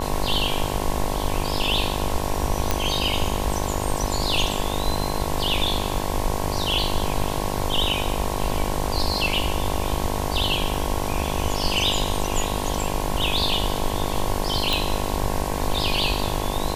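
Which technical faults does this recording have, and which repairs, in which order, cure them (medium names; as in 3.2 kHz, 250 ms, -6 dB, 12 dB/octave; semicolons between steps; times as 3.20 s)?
buzz 50 Hz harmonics 22 -28 dBFS
2.71 s: pop -5 dBFS
14.73 s: pop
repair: de-click; de-hum 50 Hz, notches 22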